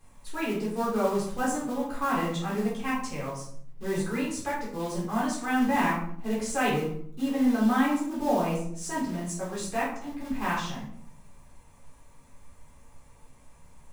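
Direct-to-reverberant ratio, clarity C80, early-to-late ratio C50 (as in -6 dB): -6.5 dB, 7.5 dB, 3.5 dB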